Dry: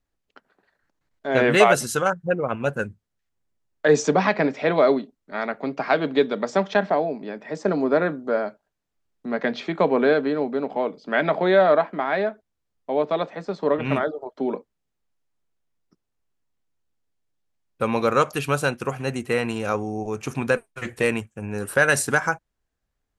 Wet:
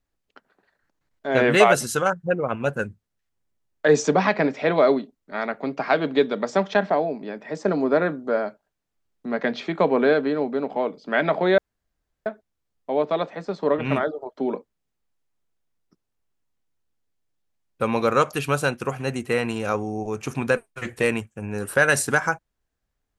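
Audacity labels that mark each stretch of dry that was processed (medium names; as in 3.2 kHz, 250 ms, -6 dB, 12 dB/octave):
11.580000	12.260000	room tone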